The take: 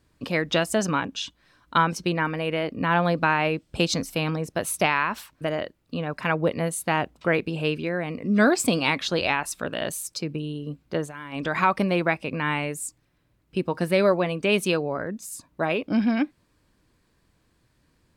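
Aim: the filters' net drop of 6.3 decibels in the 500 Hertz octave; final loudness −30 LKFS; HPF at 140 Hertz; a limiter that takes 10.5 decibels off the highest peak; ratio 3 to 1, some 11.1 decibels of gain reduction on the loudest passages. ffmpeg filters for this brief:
ffmpeg -i in.wav -af "highpass=140,equalizer=frequency=500:width_type=o:gain=-8,acompressor=threshold=-32dB:ratio=3,volume=7dB,alimiter=limit=-19dB:level=0:latency=1" out.wav

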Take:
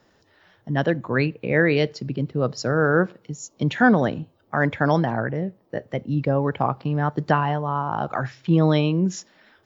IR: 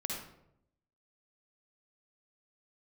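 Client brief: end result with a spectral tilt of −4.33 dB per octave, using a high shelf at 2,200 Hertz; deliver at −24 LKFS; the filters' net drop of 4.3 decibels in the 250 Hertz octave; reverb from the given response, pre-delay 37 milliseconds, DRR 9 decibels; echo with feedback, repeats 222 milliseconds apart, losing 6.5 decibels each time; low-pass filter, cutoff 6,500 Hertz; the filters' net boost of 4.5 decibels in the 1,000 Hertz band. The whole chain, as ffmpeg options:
-filter_complex "[0:a]lowpass=6500,equalizer=frequency=250:width_type=o:gain=-7,equalizer=frequency=1000:width_type=o:gain=5,highshelf=frequency=2200:gain=7,aecho=1:1:222|444|666|888|1110|1332:0.473|0.222|0.105|0.0491|0.0231|0.0109,asplit=2[link_01][link_02];[1:a]atrim=start_sample=2205,adelay=37[link_03];[link_02][link_03]afir=irnorm=-1:irlink=0,volume=-11dB[link_04];[link_01][link_04]amix=inputs=2:normalize=0,volume=-3.5dB"

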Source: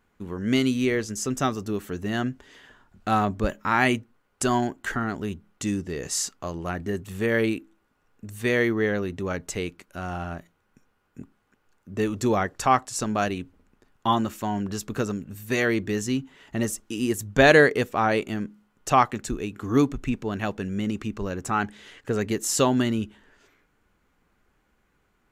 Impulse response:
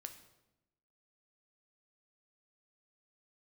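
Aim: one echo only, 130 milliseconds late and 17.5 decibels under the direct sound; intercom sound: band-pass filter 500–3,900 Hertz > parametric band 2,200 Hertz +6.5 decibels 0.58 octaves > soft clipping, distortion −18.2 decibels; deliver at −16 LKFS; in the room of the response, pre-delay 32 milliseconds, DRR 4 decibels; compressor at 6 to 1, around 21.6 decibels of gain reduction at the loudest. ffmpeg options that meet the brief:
-filter_complex "[0:a]acompressor=threshold=-36dB:ratio=6,aecho=1:1:130:0.133,asplit=2[link_01][link_02];[1:a]atrim=start_sample=2205,adelay=32[link_03];[link_02][link_03]afir=irnorm=-1:irlink=0,volume=0.5dB[link_04];[link_01][link_04]amix=inputs=2:normalize=0,highpass=500,lowpass=3900,equalizer=frequency=2200:width_type=o:width=0.58:gain=6.5,asoftclip=threshold=-28.5dB,volume=26.5dB"

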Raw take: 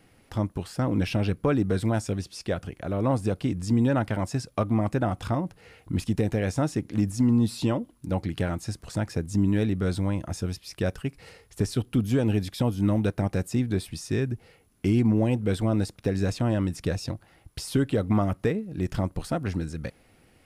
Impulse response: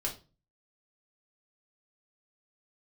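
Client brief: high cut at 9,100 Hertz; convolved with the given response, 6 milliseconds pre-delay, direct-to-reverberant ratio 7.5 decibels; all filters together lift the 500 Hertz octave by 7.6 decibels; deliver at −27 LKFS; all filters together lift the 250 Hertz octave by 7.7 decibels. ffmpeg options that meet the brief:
-filter_complex "[0:a]lowpass=9100,equalizer=frequency=250:width_type=o:gain=7.5,equalizer=frequency=500:width_type=o:gain=7,asplit=2[link_01][link_02];[1:a]atrim=start_sample=2205,adelay=6[link_03];[link_02][link_03]afir=irnorm=-1:irlink=0,volume=-10.5dB[link_04];[link_01][link_04]amix=inputs=2:normalize=0,volume=-6.5dB"

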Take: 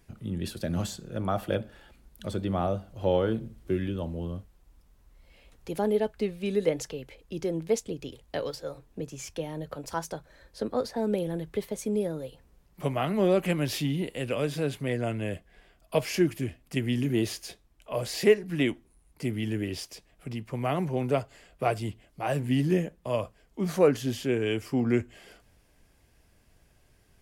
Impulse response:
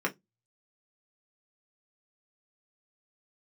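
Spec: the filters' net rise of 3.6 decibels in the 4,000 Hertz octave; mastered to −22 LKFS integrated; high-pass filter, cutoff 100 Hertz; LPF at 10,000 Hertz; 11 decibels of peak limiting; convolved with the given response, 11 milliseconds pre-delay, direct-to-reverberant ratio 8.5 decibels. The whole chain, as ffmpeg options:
-filter_complex "[0:a]highpass=100,lowpass=10000,equalizer=frequency=4000:width_type=o:gain=5,alimiter=limit=-20dB:level=0:latency=1,asplit=2[link_01][link_02];[1:a]atrim=start_sample=2205,adelay=11[link_03];[link_02][link_03]afir=irnorm=-1:irlink=0,volume=-17dB[link_04];[link_01][link_04]amix=inputs=2:normalize=0,volume=9.5dB"

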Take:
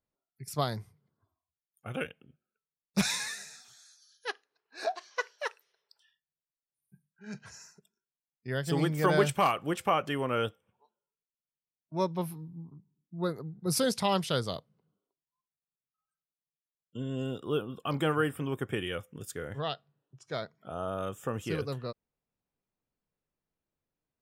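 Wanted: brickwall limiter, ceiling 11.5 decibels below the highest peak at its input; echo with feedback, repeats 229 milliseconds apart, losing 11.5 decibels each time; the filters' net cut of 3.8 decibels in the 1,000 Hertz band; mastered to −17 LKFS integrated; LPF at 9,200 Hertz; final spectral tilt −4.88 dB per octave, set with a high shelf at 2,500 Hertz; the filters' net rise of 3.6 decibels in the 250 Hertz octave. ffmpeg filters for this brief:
ffmpeg -i in.wav -af "lowpass=9200,equalizer=frequency=250:width_type=o:gain=5.5,equalizer=frequency=1000:width_type=o:gain=-6,highshelf=frequency=2500:gain=3.5,alimiter=limit=-22.5dB:level=0:latency=1,aecho=1:1:229|458|687:0.266|0.0718|0.0194,volume=18dB" out.wav

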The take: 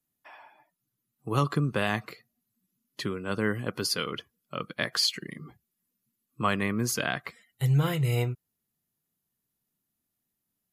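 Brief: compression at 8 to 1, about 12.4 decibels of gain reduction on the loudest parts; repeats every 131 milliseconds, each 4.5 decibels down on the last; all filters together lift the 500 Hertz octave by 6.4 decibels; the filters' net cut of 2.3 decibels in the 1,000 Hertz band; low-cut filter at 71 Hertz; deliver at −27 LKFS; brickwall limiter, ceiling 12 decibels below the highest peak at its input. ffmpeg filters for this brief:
ffmpeg -i in.wav -af "highpass=71,equalizer=frequency=500:width_type=o:gain=9,equalizer=frequency=1000:width_type=o:gain=-6,acompressor=threshold=-32dB:ratio=8,alimiter=level_in=4dB:limit=-24dB:level=0:latency=1,volume=-4dB,aecho=1:1:131|262|393|524|655|786|917|1048|1179:0.596|0.357|0.214|0.129|0.0772|0.0463|0.0278|0.0167|0.01,volume=11.5dB" out.wav

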